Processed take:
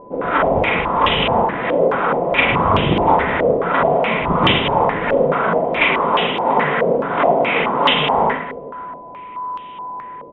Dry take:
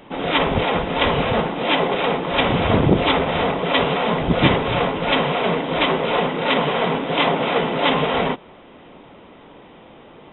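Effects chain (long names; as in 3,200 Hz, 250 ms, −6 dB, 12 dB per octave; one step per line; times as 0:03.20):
reverse bouncing-ball delay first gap 40 ms, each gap 1.6×, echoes 5
steady tone 1,000 Hz −30 dBFS
low-pass on a step sequencer 4.7 Hz 530–3,000 Hz
level −3 dB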